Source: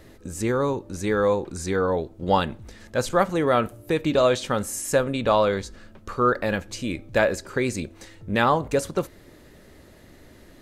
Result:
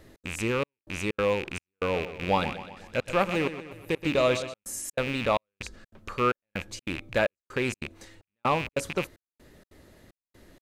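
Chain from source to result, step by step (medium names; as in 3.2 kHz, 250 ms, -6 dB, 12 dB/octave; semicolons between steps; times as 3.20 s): rattle on loud lows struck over -38 dBFS, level -17 dBFS; trance gate "xx.xxxxx...x" 190 bpm -60 dB; 1.78–4.54 s: modulated delay 125 ms, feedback 53%, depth 50 cents, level -12 dB; trim -4.5 dB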